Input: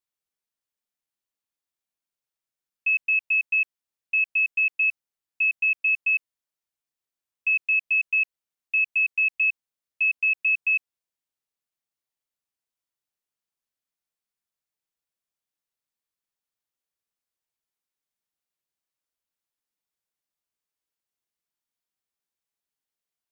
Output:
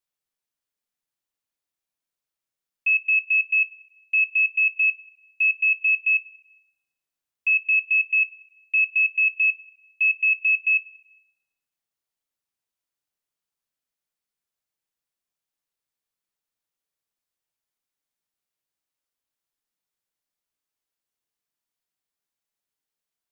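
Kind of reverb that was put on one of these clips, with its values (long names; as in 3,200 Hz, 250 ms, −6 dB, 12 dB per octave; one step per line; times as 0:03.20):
rectangular room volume 430 cubic metres, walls mixed, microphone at 0.33 metres
level +1 dB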